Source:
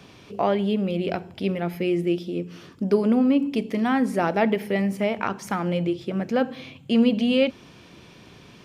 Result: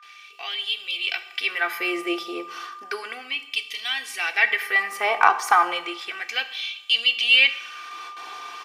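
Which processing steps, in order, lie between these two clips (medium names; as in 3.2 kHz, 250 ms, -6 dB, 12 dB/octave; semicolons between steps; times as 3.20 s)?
gate with hold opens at -39 dBFS; bass shelf 150 Hz +4.5 dB; comb 2.6 ms, depth 76%; level rider gain up to 9.5 dB; whistle 1.2 kHz -46 dBFS; LFO high-pass sine 0.33 Hz 940–3200 Hz; wavefolder -0.5 dBFS; two-slope reverb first 0.74 s, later 2.5 s, from -21 dB, DRR 11 dB; trim -1 dB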